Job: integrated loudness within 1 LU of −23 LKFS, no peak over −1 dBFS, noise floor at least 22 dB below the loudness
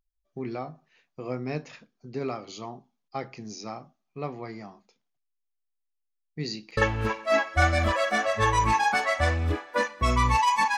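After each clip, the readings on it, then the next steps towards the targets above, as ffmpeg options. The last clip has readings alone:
integrated loudness −26.5 LKFS; sample peak −7.5 dBFS; target loudness −23.0 LKFS
→ -af "volume=3.5dB"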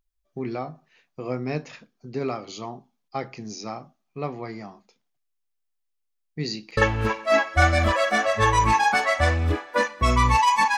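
integrated loudness −23.0 LKFS; sample peak −4.0 dBFS; background noise floor −76 dBFS

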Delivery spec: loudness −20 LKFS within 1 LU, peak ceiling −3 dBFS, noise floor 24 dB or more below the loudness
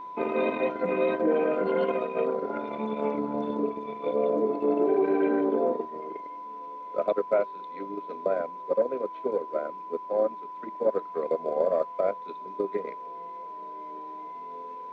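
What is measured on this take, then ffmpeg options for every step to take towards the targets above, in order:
interfering tone 1,000 Hz; level of the tone −37 dBFS; integrated loudness −28.5 LKFS; sample peak −12.5 dBFS; target loudness −20.0 LKFS
→ -af "bandreject=frequency=1000:width=30"
-af "volume=8.5dB"

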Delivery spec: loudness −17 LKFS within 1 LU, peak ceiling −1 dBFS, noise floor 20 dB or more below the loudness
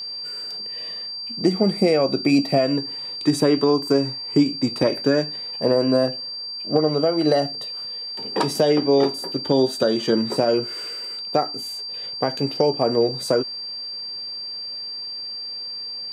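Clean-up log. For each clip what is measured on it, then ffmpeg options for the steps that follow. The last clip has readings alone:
interfering tone 4,700 Hz; level of the tone −29 dBFS; integrated loudness −22.0 LKFS; sample peak −5.5 dBFS; target loudness −17.0 LKFS
→ -af "bandreject=frequency=4700:width=30"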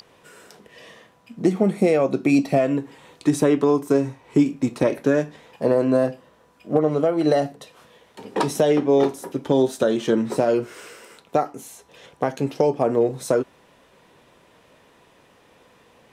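interfering tone none found; integrated loudness −21.5 LKFS; sample peak −6.0 dBFS; target loudness −17.0 LKFS
→ -af "volume=4.5dB"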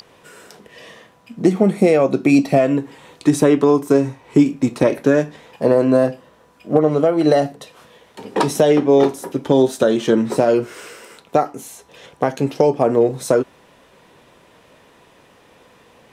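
integrated loudness −17.0 LKFS; sample peak −1.5 dBFS; background noise floor −52 dBFS

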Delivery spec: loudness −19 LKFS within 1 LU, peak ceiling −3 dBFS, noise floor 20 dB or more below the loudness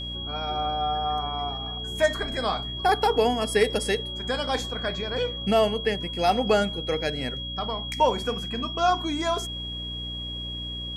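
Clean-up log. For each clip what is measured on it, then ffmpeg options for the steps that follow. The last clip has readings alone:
mains hum 60 Hz; hum harmonics up to 300 Hz; level of the hum −35 dBFS; interfering tone 3,300 Hz; level of the tone −33 dBFS; integrated loudness −26.0 LKFS; sample peak −9.0 dBFS; target loudness −19.0 LKFS
→ -af "bandreject=frequency=60:width_type=h:width=6,bandreject=frequency=120:width_type=h:width=6,bandreject=frequency=180:width_type=h:width=6,bandreject=frequency=240:width_type=h:width=6,bandreject=frequency=300:width_type=h:width=6"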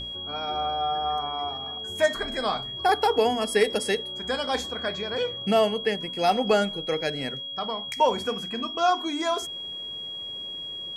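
mains hum none found; interfering tone 3,300 Hz; level of the tone −33 dBFS
→ -af "bandreject=frequency=3300:width=30"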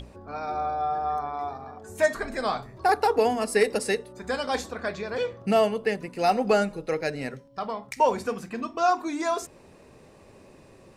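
interfering tone none found; integrated loudness −27.0 LKFS; sample peak −10.0 dBFS; target loudness −19.0 LKFS
→ -af "volume=8dB,alimiter=limit=-3dB:level=0:latency=1"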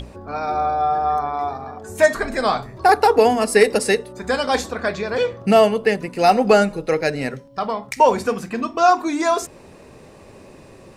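integrated loudness −19.0 LKFS; sample peak −3.0 dBFS; background noise floor −45 dBFS

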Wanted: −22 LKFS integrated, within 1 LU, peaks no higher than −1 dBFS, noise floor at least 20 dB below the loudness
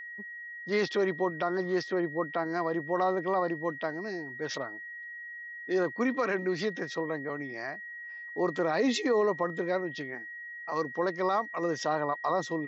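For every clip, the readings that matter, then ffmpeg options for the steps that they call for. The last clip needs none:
interfering tone 1,900 Hz; level of the tone −40 dBFS; integrated loudness −31.5 LKFS; sample peak −17.5 dBFS; target loudness −22.0 LKFS
→ -af "bandreject=frequency=1900:width=30"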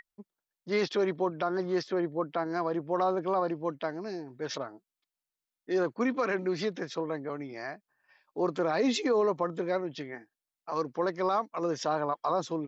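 interfering tone none found; integrated loudness −31.0 LKFS; sample peak −18.0 dBFS; target loudness −22.0 LKFS
→ -af "volume=9dB"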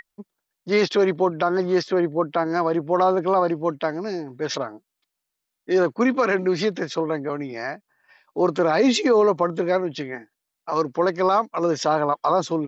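integrated loudness −22.0 LKFS; sample peak −9.0 dBFS; background noise floor −82 dBFS

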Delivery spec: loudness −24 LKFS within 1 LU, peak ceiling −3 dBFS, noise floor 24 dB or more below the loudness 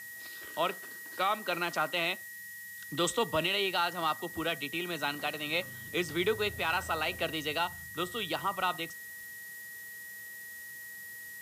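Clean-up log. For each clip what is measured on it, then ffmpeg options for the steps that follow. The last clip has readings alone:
interfering tone 1,900 Hz; level of the tone −44 dBFS; background noise floor −46 dBFS; target noise floor −58 dBFS; integrated loudness −33.5 LKFS; sample peak −18.5 dBFS; target loudness −24.0 LKFS
→ -af "bandreject=frequency=1900:width=30"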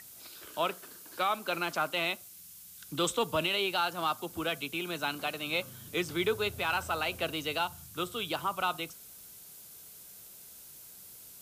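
interfering tone none found; background noise floor −51 dBFS; target noise floor −57 dBFS
→ -af "afftdn=noise_reduction=6:noise_floor=-51"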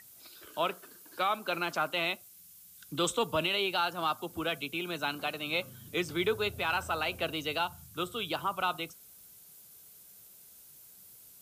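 background noise floor −55 dBFS; target noise floor −57 dBFS
→ -af "afftdn=noise_reduction=6:noise_floor=-55"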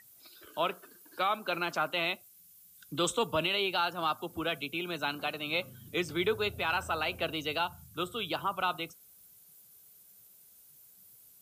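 background noise floor −59 dBFS; integrated loudness −32.5 LKFS; sample peak −18.5 dBFS; target loudness −24.0 LKFS
→ -af "volume=8.5dB"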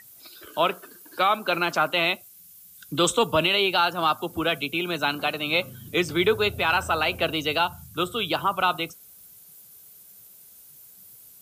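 integrated loudness −24.0 LKFS; sample peak −10.0 dBFS; background noise floor −50 dBFS

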